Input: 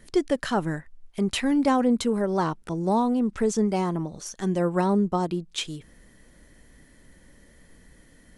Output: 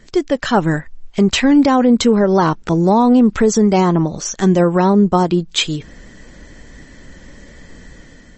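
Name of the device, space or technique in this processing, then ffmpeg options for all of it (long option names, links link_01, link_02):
low-bitrate web radio: -af "dynaudnorm=framelen=220:gausssize=5:maxgain=8.5dB,alimiter=limit=-10dB:level=0:latency=1:release=162,volume=6.5dB" -ar 32000 -c:a libmp3lame -b:a 32k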